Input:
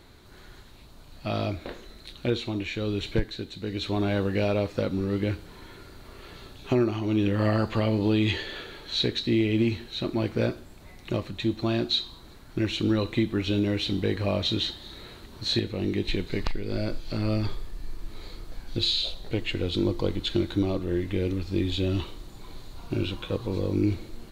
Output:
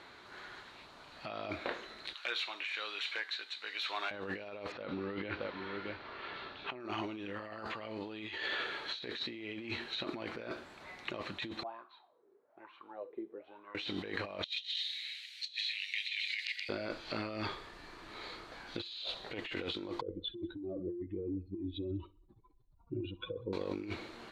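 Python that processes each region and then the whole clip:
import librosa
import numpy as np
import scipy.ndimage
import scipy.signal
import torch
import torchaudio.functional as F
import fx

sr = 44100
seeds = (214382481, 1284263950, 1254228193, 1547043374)

y = fx.chain(x, sr, fx.highpass(hz=1200.0, slope=12),
    fx.clip_hard(threshold_db=-30.5), at=(2.13, 4.11))
y = fx.chain(y, sr, fx.lowpass(hz=4300.0, slope=24),
    fx.echo_single(ms=623, db=-12.0), at=(4.72, 6.8))
y = fx.chain(y, sr, fx.high_shelf(hz=4200.0, db=-9.0),
    fx.wah_lfo(hz=1.1, low_hz=390.0, high_hz=1100.0, q=13.0), at=(11.63, 13.75))
y = fx.chain(y, sr, fx.steep_highpass(hz=2100.0, slope=48),
    fx.echo_single(ms=126, db=-9.5),
    fx.over_compress(threshold_db=-37.0, ratio=-0.5), at=(14.44, 16.69))
y = fx.chain(y, sr, fx.spec_expand(power=2.5),
    fx.air_absorb(metres=230.0),
    fx.echo_feedback(ms=64, feedback_pct=48, wet_db=-22.0), at=(20.01, 23.53))
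y = scipy.signal.sosfilt(scipy.signal.butter(2, 1500.0, 'lowpass', fs=sr, output='sos'), y)
y = np.diff(y, prepend=0.0)
y = fx.over_compress(y, sr, threshold_db=-58.0, ratio=-1.0)
y = y * librosa.db_to_amplitude(18.0)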